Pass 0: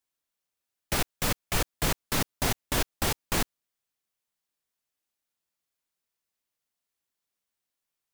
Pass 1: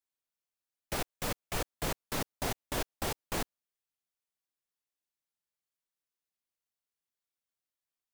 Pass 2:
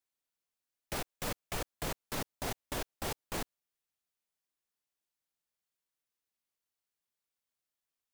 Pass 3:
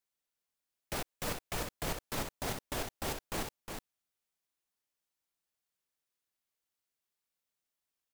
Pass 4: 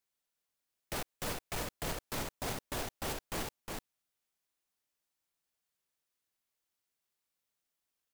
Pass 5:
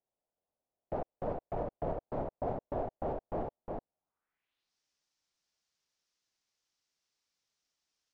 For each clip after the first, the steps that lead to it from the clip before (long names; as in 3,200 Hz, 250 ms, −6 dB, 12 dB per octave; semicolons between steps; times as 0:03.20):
dynamic equaliser 570 Hz, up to +5 dB, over −44 dBFS, Q 0.74; level −8.5 dB
brickwall limiter −27 dBFS, peak gain reduction 6.5 dB; level +1 dB
single-tap delay 361 ms −6 dB
hard clipping −34.5 dBFS, distortion −10 dB; level +1.5 dB
low-pass filter sweep 670 Hz → 5,600 Hz, 0:03.96–0:04.74; level +1 dB